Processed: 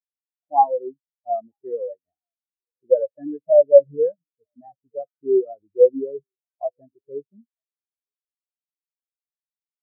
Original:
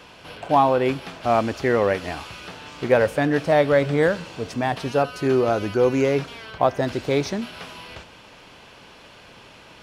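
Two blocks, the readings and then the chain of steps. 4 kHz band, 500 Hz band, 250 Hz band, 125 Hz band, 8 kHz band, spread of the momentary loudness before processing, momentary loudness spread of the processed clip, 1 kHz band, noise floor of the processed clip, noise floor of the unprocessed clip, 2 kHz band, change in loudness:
under -40 dB, +1.5 dB, -10.0 dB, under -25 dB, under -35 dB, 18 LU, 22 LU, -2.0 dB, under -85 dBFS, -47 dBFS, under -40 dB, +1.5 dB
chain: echo 0.943 s -20 dB; spectral expander 4:1; gain +3.5 dB

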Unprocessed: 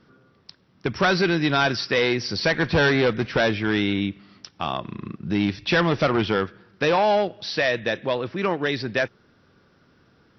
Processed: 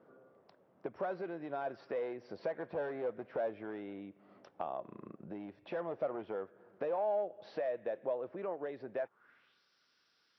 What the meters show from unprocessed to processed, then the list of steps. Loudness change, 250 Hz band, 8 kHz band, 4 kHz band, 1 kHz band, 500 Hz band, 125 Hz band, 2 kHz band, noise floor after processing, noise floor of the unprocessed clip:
-17.0 dB, -21.5 dB, n/a, under -35 dB, -16.5 dB, -13.0 dB, -28.5 dB, -27.0 dB, -75 dBFS, -60 dBFS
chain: bell 4600 Hz -7.5 dB 1.1 oct; compressor 6:1, threshold -35 dBFS, peak gain reduction 17 dB; band-pass sweep 600 Hz -> 4800 Hz, 8.97–9.62; gain +4.5 dB

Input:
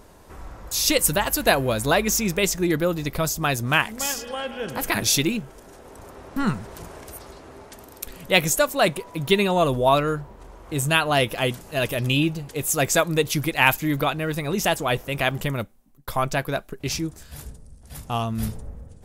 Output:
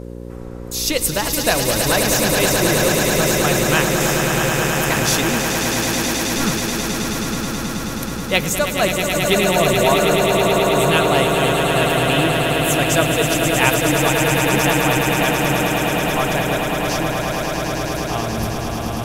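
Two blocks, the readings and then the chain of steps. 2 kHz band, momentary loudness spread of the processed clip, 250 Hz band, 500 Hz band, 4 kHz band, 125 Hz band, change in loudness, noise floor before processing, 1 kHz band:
+6.5 dB, 7 LU, +6.5 dB, +6.5 dB, +6.5 dB, +6.0 dB, +5.5 dB, -48 dBFS, +6.0 dB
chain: swelling echo 0.107 s, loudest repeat 8, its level -6.5 dB; buzz 60 Hz, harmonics 9, -32 dBFS -2 dB/oct

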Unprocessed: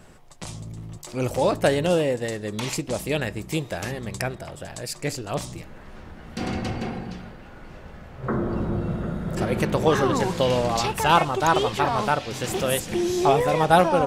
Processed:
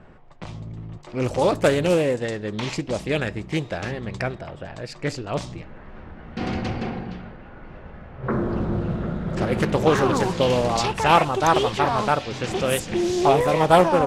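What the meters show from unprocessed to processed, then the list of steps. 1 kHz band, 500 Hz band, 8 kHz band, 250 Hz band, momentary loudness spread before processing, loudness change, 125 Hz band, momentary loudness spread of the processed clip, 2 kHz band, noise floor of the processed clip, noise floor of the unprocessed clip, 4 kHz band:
+1.0 dB, +2.0 dB, -2.0 dB, +2.0 dB, 18 LU, +1.5 dB, +1.5 dB, 18 LU, +1.0 dB, -43 dBFS, -44 dBFS, +0.5 dB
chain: low-pass opened by the level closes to 2000 Hz, open at -17.5 dBFS; Doppler distortion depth 0.33 ms; gain +1.5 dB

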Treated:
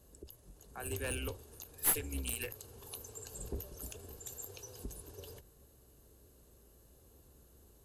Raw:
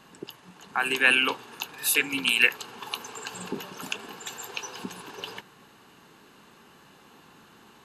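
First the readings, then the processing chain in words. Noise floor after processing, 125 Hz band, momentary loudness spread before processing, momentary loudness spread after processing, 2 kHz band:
-63 dBFS, +3.5 dB, 19 LU, 20 LU, -23.5 dB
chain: octaver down 2 oct, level -3 dB; EQ curve 110 Hz 0 dB, 180 Hz -15 dB, 410 Hz -8 dB, 590 Hz -6 dB, 860 Hz -22 dB, 2600 Hz -24 dB, 11000 Hz +2 dB; one-sided clip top -33.5 dBFS; ending taper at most 180 dB/s

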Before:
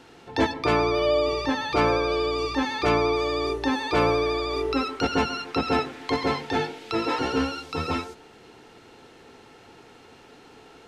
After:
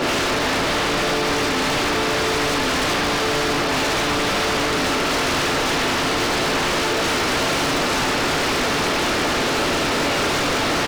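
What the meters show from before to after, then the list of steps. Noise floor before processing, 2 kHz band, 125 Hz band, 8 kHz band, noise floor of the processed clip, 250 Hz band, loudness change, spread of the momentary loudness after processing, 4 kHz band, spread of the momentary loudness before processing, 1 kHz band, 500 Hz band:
-51 dBFS, +11.0 dB, +5.5 dB, +20.0 dB, -21 dBFS, +4.5 dB, +5.5 dB, 0 LU, +12.0 dB, 7 LU, +6.0 dB, +3.0 dB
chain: per-bin compression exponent 0.2; HPF 140 Hz 12 dB/oct; limiter -13 dBFS, peak gain reduction 9.5 dB; doubler 39 ms -13 dB; non-linear reverb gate 0.16 s falling, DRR -6 dB; wavefolder -15.5 dBFS

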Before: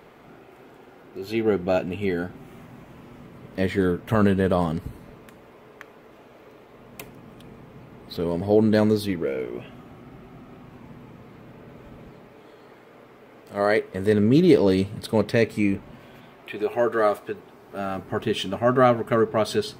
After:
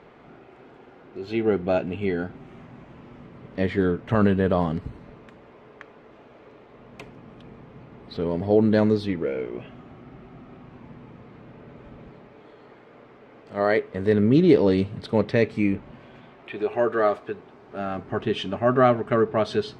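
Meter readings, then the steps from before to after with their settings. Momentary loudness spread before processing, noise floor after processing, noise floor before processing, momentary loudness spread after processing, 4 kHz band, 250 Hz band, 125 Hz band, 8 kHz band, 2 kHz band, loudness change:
18 LU, -50 dBFS, -50 dBFS, 17 LU, -3.0 dB, 0.0 dB, 0.0 dB, n/a, -1.0 dB, -0.5 dB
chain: air absorption 130 m

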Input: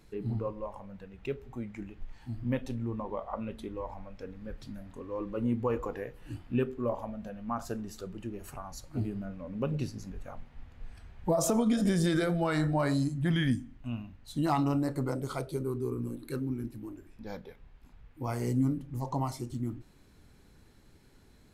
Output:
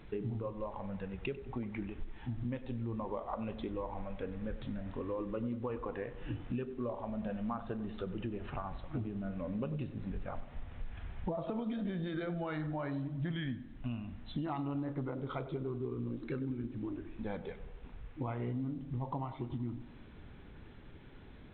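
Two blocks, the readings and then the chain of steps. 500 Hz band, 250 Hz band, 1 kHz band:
-5.5 dB, -6.0 dB, -6.0 dB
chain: compressor 8:1, threshold -41 dBFS, peak gain reduction 17.5 dB; on a send: tape echo 95 ms, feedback 71%, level -13 dB, low-pass 1700 Hz; on the sum: gain +6 dB; A-law 64 kbps 8000 Hz

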